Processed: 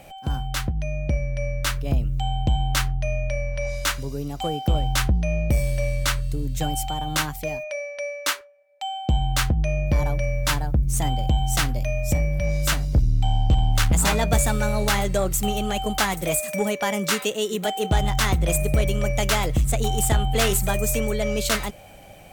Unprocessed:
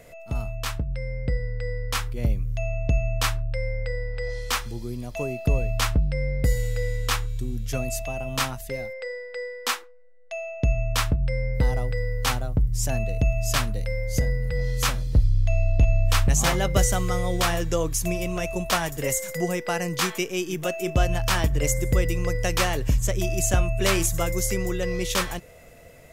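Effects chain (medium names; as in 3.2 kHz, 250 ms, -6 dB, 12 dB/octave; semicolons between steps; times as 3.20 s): Chebyshev shaper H 5 -21 dB, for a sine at -9 dBFS; tape speed +17%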